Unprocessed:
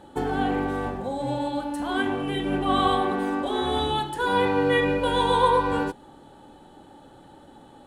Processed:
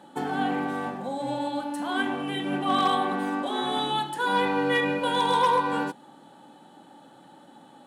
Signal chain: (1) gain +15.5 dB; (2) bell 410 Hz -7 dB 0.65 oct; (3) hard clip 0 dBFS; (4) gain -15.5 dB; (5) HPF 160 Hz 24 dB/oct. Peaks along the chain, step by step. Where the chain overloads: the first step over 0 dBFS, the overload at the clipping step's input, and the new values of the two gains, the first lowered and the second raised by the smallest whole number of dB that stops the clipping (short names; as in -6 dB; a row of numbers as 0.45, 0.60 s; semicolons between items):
+7.5, +6.0, 0.0, -15.5, -12.0 dBFS; step 1, 6.0 dB; step 1 +9.5 dB, step 4 -9.5 dB